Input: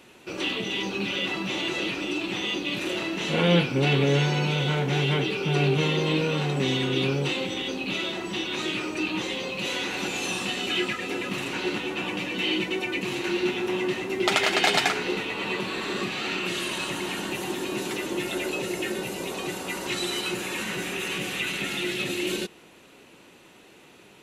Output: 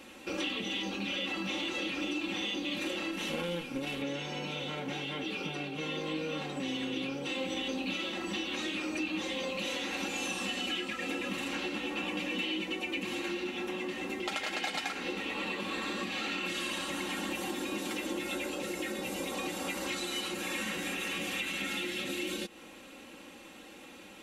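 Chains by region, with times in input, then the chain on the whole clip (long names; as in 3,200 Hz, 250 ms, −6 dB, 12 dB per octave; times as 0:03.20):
0:03.11–0:04.02: variable-slope delta modulation 64 kbit/s + tube saturation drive 13 dB, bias 0.65
whole clip: downward compressor, threshold −34 dBFS; comb filter 3.7 ms, depth 70%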